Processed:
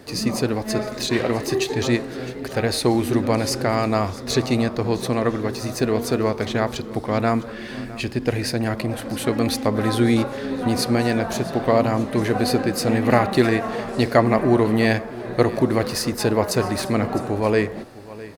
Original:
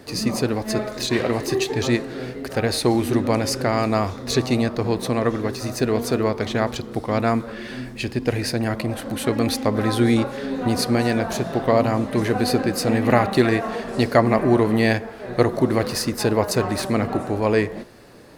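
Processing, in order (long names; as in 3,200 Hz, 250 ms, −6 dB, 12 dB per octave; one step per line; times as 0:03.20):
single-tap delay 658 ms −18 dB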